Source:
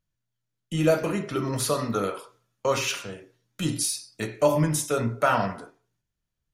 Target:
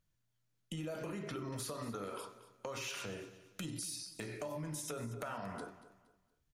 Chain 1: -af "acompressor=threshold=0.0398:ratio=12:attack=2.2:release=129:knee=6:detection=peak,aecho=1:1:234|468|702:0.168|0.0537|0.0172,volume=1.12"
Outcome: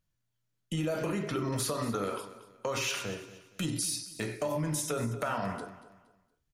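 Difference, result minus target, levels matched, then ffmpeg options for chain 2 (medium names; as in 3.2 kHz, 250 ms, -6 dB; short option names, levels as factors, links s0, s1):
compression: peak gain reduction -10 dB
-af "acompressor=threshold=0.0112:ratio=12:attack=2.2:release=129:knee=6:detection=peak,aecho=1:1:234|468|702:0.168|0.0537|0.0172,volume=1.12"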